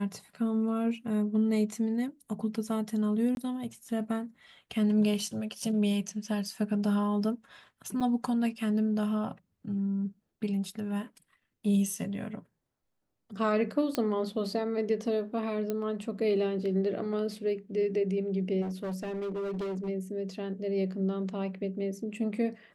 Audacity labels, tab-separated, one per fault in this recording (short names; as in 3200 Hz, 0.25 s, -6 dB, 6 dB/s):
3.350000	3.370000	gap 21 ms
5.620000	5.620000	gap 3.8 ms
8.000000	8.010000	gap 6.6 ms
13.950000	13.950000	pop -14 dBFS
15.700000	15.700000	pop -19 dBFS
18.610000	19.890000	clipped -31 dBFS